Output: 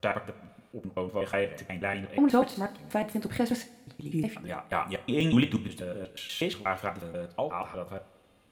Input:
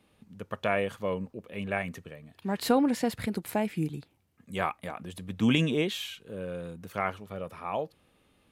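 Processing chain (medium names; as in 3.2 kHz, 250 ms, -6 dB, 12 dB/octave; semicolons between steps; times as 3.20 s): slices played last to first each 121 ms, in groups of 6; two-slope reverb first 0.26 s, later 1.7 s, from -18 dB, DRR 6.5 dB; de-esser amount 85%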